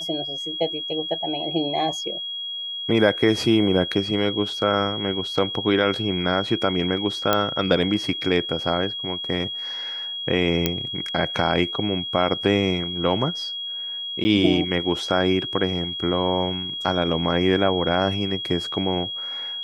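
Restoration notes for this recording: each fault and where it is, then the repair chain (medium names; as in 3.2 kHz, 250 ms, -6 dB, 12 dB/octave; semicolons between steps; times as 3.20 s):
whine 3.3 kHz -28 dBFS
7.33 s: pop -4 dBFS
10.66 s: pop -4 dBFS
14.24–14.25 s: dropout 10 ms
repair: de-click; band-stop 3.3 kHz, Q 30; interpolate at 14.24 s, 10 ms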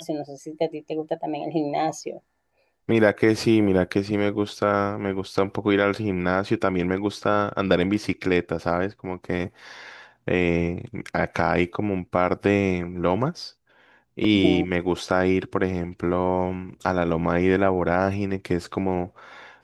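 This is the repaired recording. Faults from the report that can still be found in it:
nothing left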